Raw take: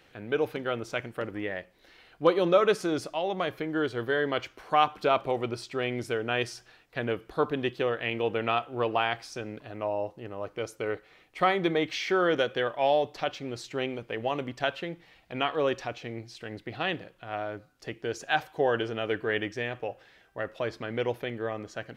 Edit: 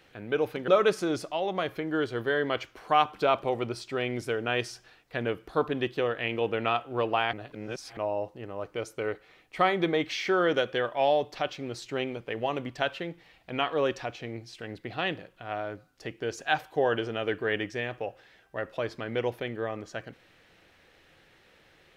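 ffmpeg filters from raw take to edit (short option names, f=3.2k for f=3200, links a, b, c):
-filter_complex "[0:a]asplit=4[a][b][c][d];[a]atrim=end=0.682[e];[b]atrim=start=2.498:end=9.152[f];[c]atrim=start=9.148:end=9.792,asetpts=PTS-STARTPTS,areverse[g];[d]atrim=start=9.788[h];[e][f]acrossfade=d=0.004:c1=hsin:c2=hsin[i];[i][g]acrossfade=d=0.004:c1=hsin:c2=hsin[j];[j][h]acrossfade=d=0.004:c1=hsin:c2=hsin"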